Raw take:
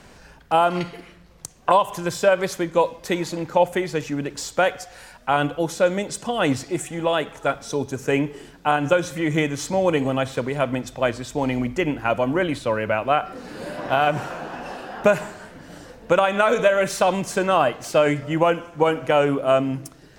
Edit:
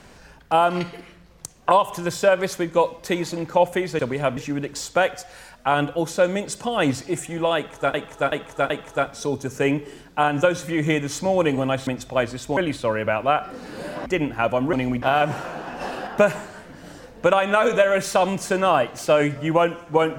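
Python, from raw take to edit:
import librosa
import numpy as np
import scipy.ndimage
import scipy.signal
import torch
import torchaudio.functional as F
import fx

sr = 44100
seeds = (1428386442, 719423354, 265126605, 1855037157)

y = fx.edit(x, sr, fx.repeat(start_s=7.18, length_s=0.38, count=4),
    fx.move(start_s=10.35, length_s=0.38, to_s=3.99),
    fx.swap(start_s=11.43, length_s=0.29, other_s=12.39, other_length_s=1.49),
    fx.clip_gain(start_s=14.67, length_s=0.26, db=4.5), tone=tone)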